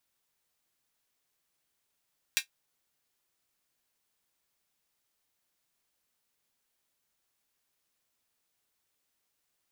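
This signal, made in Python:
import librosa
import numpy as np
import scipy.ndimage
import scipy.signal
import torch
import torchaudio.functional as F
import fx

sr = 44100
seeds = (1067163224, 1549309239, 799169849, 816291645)

y = fx.drum_hat(sr, length_s=0.24, from_hz=2200.0, decay_s=0.11)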